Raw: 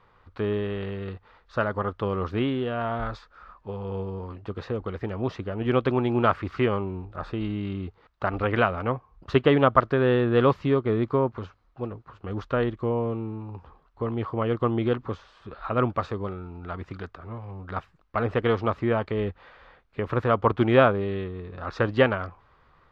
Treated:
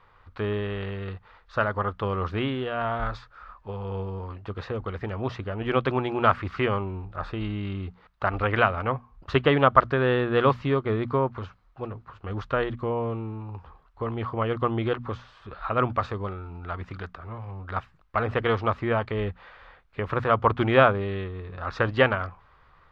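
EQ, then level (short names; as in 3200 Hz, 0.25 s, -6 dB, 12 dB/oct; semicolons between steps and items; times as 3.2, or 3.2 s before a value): bell 290 Hz -7.5 dB 2.5 oct; high shelf 4500 Hz -7 dB; notches 60/120/180/240 Hz; +4.5 dB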